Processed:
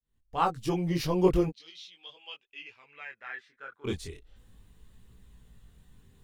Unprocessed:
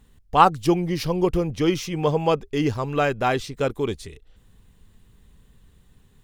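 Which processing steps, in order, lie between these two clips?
fade in at the beginning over 1.17 s
0:01.48–0:03.84: resonant band-pass 4,400 Hz → 1,400 Hz, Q 8.3
multi-voice chorus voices 2, 0.39 Hz, delay 20 ms, depth 4.2 ms

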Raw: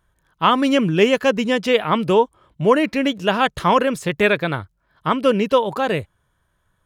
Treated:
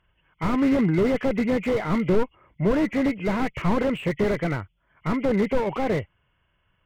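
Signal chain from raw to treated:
hearing-aid frequency compression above 1,900 Hz 4 to 1
harmonic generator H 5 −29 dB, 6 −28 dB, 7 −25 dB, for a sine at −2 dBFS
slew-rate limiting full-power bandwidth 50 Hz

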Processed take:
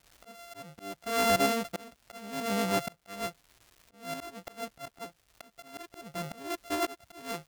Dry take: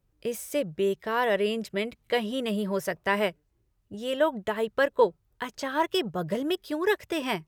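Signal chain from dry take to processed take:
samples sorted by size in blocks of 64 samples
surface crackle 390 per second −45 dBFS
volume swells 500 ms

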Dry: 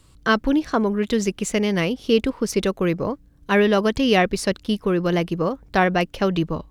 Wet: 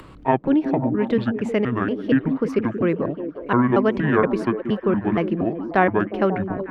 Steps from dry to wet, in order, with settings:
pitch shifter gated in a rhythm −9 semitones, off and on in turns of 235 ms
three-way crossover with the lows and the highs turned down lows −12 dB, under 160 Hz, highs −24 dB, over 2,500 Hz
upward compression, threshold −32 dBFS
on a send: echo through a band-pass that steps 180 ms, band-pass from 250 Hz, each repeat 0.7 octaves, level −5.5 dB
on the sum: level +1.5 dB

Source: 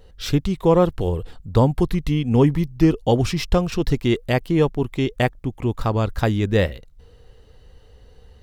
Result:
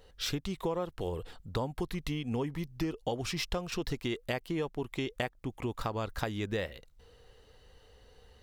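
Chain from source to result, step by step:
low-shelf EQ 340 Hz −10 dB
downward compressor 6 to 1, threshold −28 dBFS, peak gain reduction 13 dB
level −2.5 dB

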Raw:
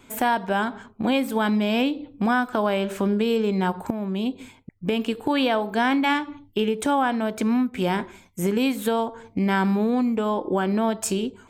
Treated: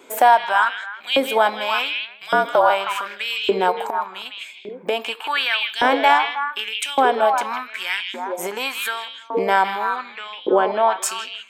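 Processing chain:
0:02.11–0:02.70: frequency shifter −53 Hz
0:09.96–0:11.02: low-pass filter 4,100 Hz 12 dB per octave
echo through a band-pass that steps 158 ms, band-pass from 2,900 Hz, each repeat −1.4 octaves, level −2.5 dB
auto-filter high-pass saw up 0.86 Hz 400–3,100 Hz
level +4 dB

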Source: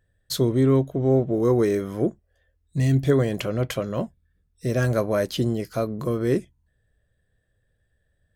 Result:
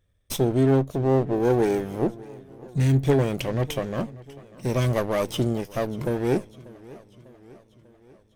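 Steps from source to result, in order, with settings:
lower of the sound and its delayed copy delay 0.35 ms
feedback echo with a swinging delay time 594 ms, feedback 57%, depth 126 cents, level −20.5 dB

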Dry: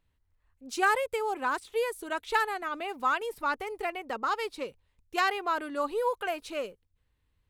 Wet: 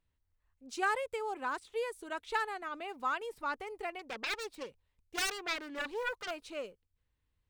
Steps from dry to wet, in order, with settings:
0:03.99–0:06.31: phase distortion by the signal itself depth 0.63 ms
parametric band 12,000 Hz −13 dB 0.23 octaves
level −6.5 dB

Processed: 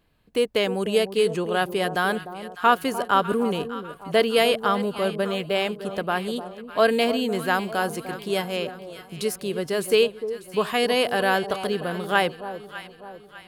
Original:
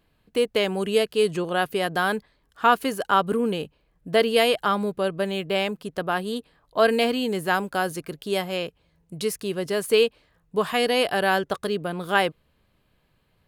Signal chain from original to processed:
delay that swaps between a low-pass and a high-pass 300 ms, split 1,000 Hz, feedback 66%, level −10.5 dB

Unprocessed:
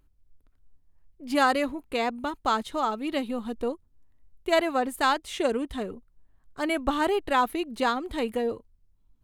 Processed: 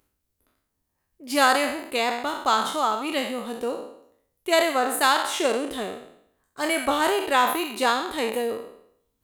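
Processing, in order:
peak hold with a decay on every bin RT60 0.68 s
high-pass filter 310 Hz 6 dB per octave
high-shelf EQ 6,000 Hz +9 dB
level +2 dB

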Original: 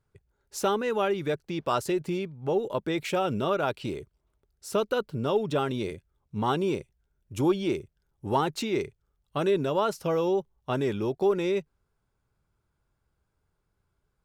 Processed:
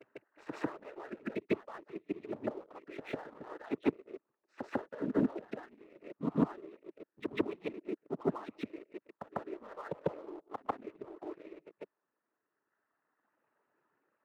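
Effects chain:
delay that plays each chunk backwards 130 ms, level −12 dB
reverb reduction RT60 1.8 s
Chebyshev band-pass filter 270–2,000 Hz, order 3
gate with flip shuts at −30 dBFS, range −33 dB
cochlear-implant simulation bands 12
backwards echo 148 ms −8 dB
leveller curve on the samples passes 1
level +10.5 dB

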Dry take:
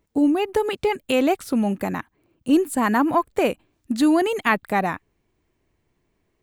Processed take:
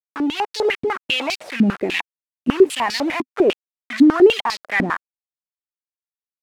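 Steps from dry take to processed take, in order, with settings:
0:01.20–0:03.33: high shelf with overshoot 1,700 Hz +8.5 dB, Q 3
leveller curve on the samples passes 2
brickwall limiter −14.5 dBFS, peak gain reduction 9.5 dB
automatic gain control gain up to 4 dB
bit reduction 4 bits
band-pass on a step sequencer 10 Hz 260–4,500 Hz
level +8 dB

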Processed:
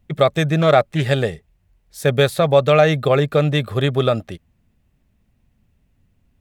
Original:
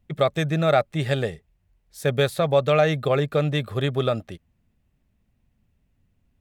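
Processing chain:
0:00.61–0:01.03: highs frequency-modulated by the lows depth 0.16 ms
level +5.5 dB

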